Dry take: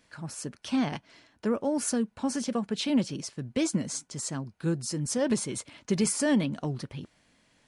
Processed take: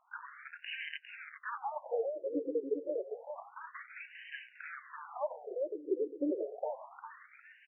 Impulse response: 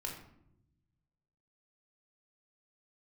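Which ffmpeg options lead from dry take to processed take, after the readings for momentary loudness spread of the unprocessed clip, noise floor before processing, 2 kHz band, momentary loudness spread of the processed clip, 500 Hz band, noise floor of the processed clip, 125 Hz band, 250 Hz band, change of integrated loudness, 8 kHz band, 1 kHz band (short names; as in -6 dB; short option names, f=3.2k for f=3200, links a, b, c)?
11 LU, -68 dBFS, -3.0 dB, 12 LU, -3.0 dB, -62 dBFS, under -40 dB, -15.0 dB, -9.5 dB, under -40 dB, -3.0 dB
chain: -filter_complex "[0:a]alimiter=limit=-23.5dB:level=0:latency=1:release=476,aeval=exprs='0.0668*(cos(1*acos(clip(val(0)/0.0668,-1,1)))-cos(1*PI/2))+0.0015*(cos(3*acos(clip(val(0)/0.0668,-1,1)))-cos(3*PI/2))+0.00473*(cos(8*acos(clip(val(0)/0.0668,-1,1)))-cos(8*PI/2))':c=same,acrusher=bits=3:mode=log:mix=0:aa=0.000001,asplit=2[a][b];[b]adelay=404,lowpass=f=4k:p=1,volume=-6.5dB,asplit=2[c][d];[d]adelay=404,lowpass=f=4k:p=1,volume=0.47,asplit=2[e][f];[f]adelay=404,lowpass=f=4k:p=1,volume=0.47,asplit=2[g][h];[h]adelay=404,lowpass=f=4k:p=1,volume=0.47,asplit=2[i][j];[j]adelay=404,lowpass=f=4k:p=1,volume=0.47,asplit=2[k][l];[l]adelay=404,lowpass=f=4k:p=1,volume=0.47[m];[c][e][g][i][k][m]amix=inputs=6:normalize=0[n];[a][n]amix=inputs=2:normalize=0,afftfilt=real='re*between(b*sr/1024,380*pow(2200/380,0.5+0.5*sin(2*PI*0.29*pts/sr))/1.41,380*pow(2200/380,0.5+0.5*sin(2*PI*0.29*pts/sr))*1.41)':imag='im*between(b*sr/1024,380*pow(2200/380,0.5+0.5*sin(2*PI*0.29*pts/sr))/1.41,380*pow(2200/380,0.5+0.5*sin(2*PI*0.29*pts/sr))*1.41)':win_size=1024:overlap=0.75,volume=5dB"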